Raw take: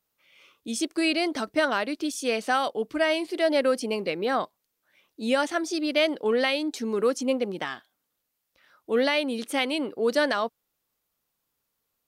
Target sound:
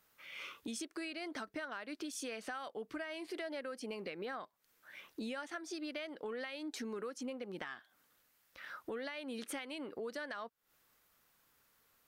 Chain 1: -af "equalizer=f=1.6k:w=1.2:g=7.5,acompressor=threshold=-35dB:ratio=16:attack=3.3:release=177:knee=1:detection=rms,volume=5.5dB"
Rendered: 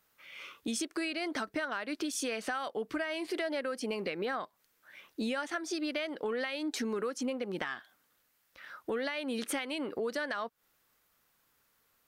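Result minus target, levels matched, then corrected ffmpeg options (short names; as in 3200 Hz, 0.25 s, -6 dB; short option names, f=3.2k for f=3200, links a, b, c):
compressor: peak gain reduction -8 dB
-af "equalizer=f=1.6k:w=1.2:g=7.5,acompressor=threshold=-43.5dB:ratio=16:attack=3.3:release=177:knee=1:detection=rms,volume=5.5dB"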